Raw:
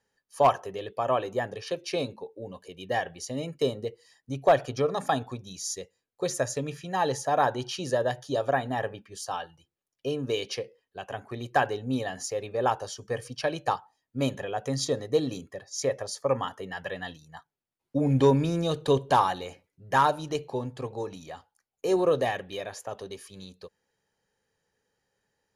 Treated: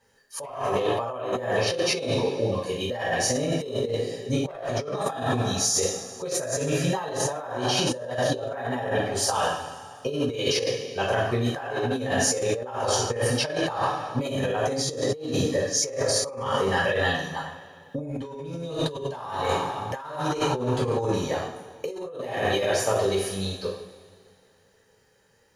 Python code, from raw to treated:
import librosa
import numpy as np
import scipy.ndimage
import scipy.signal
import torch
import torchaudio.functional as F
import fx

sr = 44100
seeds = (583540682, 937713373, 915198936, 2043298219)

y = fx.rev_double_slope(x, sr, seeds[0], early_s=0.63, late_s=2.4, knee_db=-17, drr_db=-8.0)
y = fx.over_compress(y, sr, threshold_db=-28.0, ratio=-1.0)